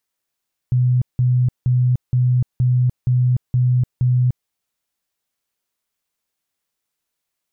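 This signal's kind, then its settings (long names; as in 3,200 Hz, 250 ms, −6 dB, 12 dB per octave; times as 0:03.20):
tone bursts 125 Hz, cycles 37, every 0.47 s, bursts 8, −12.5 dBFS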